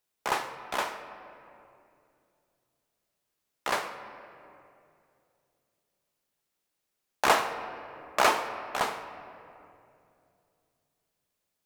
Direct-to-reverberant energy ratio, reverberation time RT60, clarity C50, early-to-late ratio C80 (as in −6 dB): 7.5 dB, 2.6 s, 9.5 dB, 10.0 dB